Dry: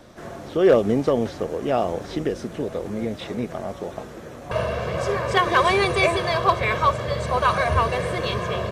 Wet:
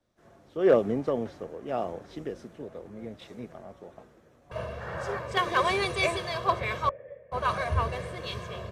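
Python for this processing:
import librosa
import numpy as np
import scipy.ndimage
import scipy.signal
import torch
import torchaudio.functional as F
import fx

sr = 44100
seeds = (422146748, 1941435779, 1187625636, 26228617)

y = fx.spec_paint(x, sr, seeds[0], shape='noise', start_s=4.8, length_s=0.4, low_hz=480.0, high_hz=1900.0, level_db=-28.0)
y = fx.formant_cascade(y, sr, vowel='e', at=(6.89, 7.32))
y = fx.band_widen(y, sr, depth_pct=70)
y = F.gain(torch.from_numpy(y), -9.0).numpy()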